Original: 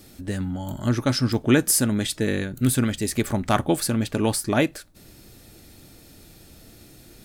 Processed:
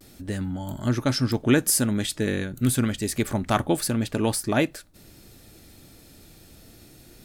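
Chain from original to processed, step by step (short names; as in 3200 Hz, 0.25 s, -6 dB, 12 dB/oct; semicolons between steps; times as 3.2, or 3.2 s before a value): vibrato 0.3 Hz 24 cents; gain -1.5 dB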